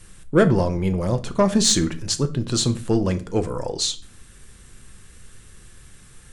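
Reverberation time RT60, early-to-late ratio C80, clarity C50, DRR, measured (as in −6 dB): 0.40 s, 22.0 dB, 17.0 dB, 8.5 dB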